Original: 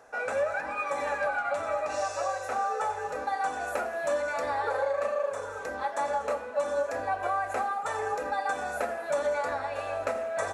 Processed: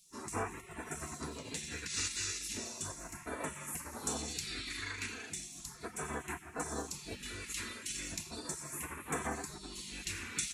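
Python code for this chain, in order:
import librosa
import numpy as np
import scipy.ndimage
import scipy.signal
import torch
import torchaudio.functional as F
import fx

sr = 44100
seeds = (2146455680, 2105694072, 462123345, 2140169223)

y = fx.spec_gate(x, sr, threshold_db=-25, keep='weak')
y = fx.phaser_stages(y, sr, stages=2, low_hz=690.0, high_hz=4300.0, hz=0.36, feedback_pct=25)
y = y * 10.0 ** (9.5 / 20.0)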